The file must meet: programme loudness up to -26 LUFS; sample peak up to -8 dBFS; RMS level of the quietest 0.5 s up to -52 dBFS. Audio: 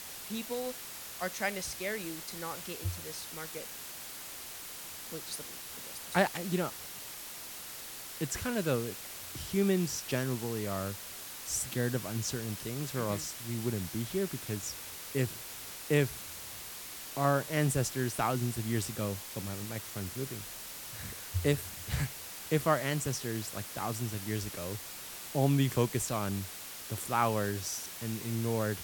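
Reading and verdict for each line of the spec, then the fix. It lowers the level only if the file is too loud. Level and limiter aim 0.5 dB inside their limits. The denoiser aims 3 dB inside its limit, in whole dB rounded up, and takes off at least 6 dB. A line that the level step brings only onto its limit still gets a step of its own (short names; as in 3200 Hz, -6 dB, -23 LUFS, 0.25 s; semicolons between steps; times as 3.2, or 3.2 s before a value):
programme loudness -34.5 LUFS: OK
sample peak -10.5 dBFS: OK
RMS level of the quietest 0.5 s -45 dBFS: fail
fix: denoiser 10 dB, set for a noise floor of -45 dBFS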